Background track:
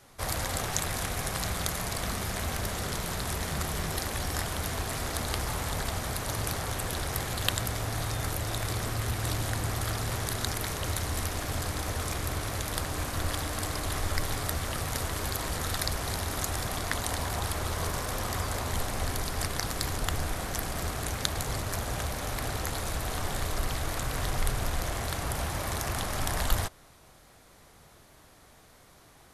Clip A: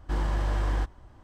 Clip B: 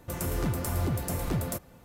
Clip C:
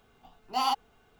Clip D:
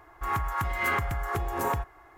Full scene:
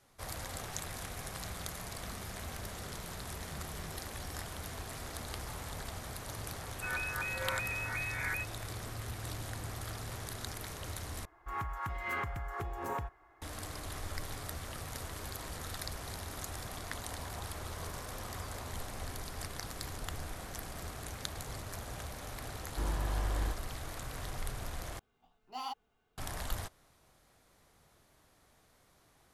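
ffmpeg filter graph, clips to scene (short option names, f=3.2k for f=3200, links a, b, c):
-filter_complex "[4:a]asplit=2[a][b];[0:a]volume=-10.5dB[c];[a]lowpass=f=2.2k:t=q:w=0.5098,lowpass=f=2.2k:t=q:w=0.6013,lowpass=f=2.2k:t=q:w=0.9,lowpass=f=2.2k:t=q:w=2.563,afreqshift=-2600[d];[b]highshelf=f=7.3k:g=-6.5[e];[c]asplit=3[f][g][h];[f]atrim=end=11.254[i];[e]atrim=end=2.17,asetpts=PTS-STARTPTS,volume=-9dB[j];[g]atrim=start=13.416:end=24.994[k];[3:a]atrim=end=1.19,asetpts=PTS-STARTPTS,volume=-13.5dB[l];[h]atrim=start=26.176[m];[d]atrim=end=2.17,asetpts=PTS-STARTPTS,volume=-9dB,afade=t=in:d=0.004:c=hsin,afade=t=out:st=2.166:d=0.004:c=hsin,adelay=6600[n];[1:a]atrim=end=1.23,asetpts=PTS-STARTPTS,volume=-7dB,afade=t=in:d=0.004:c=hsin,afade=t=out:st=1.226:d=0.004:c=hsin,adelay=22680[o];[i][j]acrossfade=d=0.004:c1=hsin:c2=hsin[p];[p][k]acrossfade=d=0.004:c1=hsin:c2=hsin[q];[q][l]acrossfade=d=0.004:c1=hsin:c2=hsin[r];[r][m]acrossfade=d=0.004:c1=hsin:c2=hsin[s];[s][n][o]amix=inputs=3:normalize=0"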